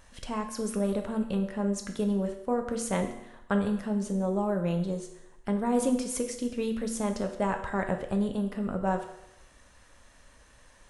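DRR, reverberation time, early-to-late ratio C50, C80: 4.5 dB, 0.85 s, 9.0 dB, 11.0 dB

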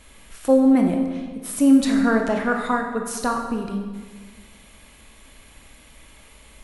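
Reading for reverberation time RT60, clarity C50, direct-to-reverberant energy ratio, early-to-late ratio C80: 1.5 s, 4.5 dB, 2.5 dB, 6.5 dB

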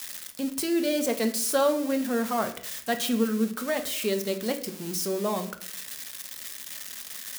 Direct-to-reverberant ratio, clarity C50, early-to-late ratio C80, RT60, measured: 6.0 dB, 12.0 dB, 16.0 dB, 0.60 s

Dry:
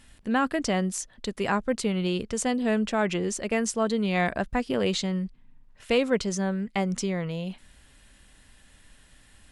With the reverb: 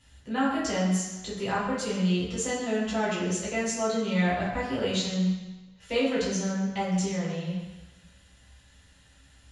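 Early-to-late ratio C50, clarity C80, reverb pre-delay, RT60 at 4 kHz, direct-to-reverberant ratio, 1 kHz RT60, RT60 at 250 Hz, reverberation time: 1.5 dB, 4.0 dB, 3 ms, 1.2 s, -8.5 dB, 1.2 s, 1.1 s, 1.1 s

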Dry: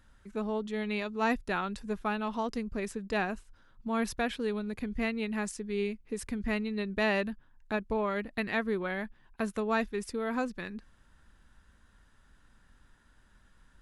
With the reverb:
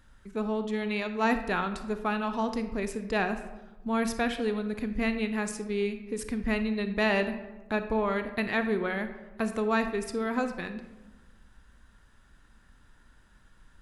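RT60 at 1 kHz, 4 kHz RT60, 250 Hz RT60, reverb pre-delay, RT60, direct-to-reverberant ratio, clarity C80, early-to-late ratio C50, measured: 1.1 s, 0.65 s, 1.4 s, 30 ms, 1.1 s, 8.5 dB, 12.0 dB, 10.0 dB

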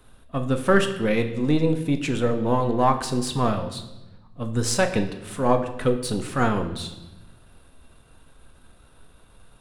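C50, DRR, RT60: 10.5 dB, 5.5 dB, 1.0 s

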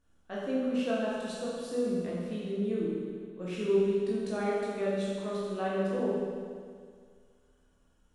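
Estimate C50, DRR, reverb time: -2.0 dB, -7.5 dB, 2.0 s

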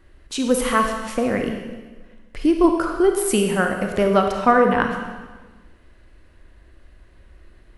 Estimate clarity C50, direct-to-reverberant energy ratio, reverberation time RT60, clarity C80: 4.5 dB, 3.5 dB, 1.3 s, 6.0 dB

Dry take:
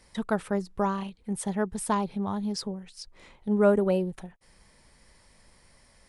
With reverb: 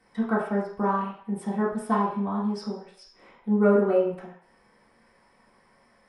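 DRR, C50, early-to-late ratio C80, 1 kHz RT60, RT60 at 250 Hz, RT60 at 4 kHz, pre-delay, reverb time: -7.5 dB, 4.0 dB, 7.5 dB, 0.60 s, 0.45 s, 0.60 s, 3 ms, 0.60 s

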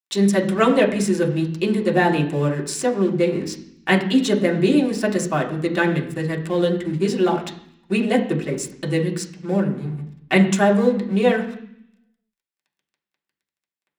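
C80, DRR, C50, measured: 13.5 dB, -1.0 dB, 10.5 dB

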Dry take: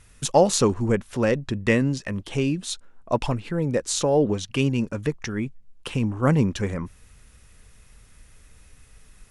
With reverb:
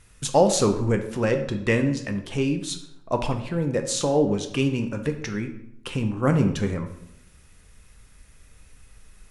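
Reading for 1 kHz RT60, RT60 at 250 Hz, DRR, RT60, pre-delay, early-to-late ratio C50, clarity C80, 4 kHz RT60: 0.75 s, 0.85 s, 5.5 dB, 0.80 s, 6 ms, 10.0 dB, 12.5 dB, 0.55 s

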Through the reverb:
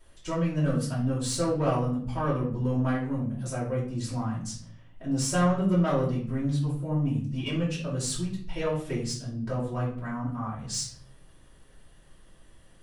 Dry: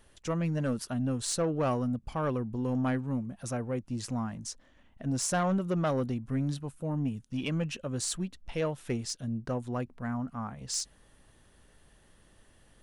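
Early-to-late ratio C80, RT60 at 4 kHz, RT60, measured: 10.0 dB, 0.40 s, 0.55 s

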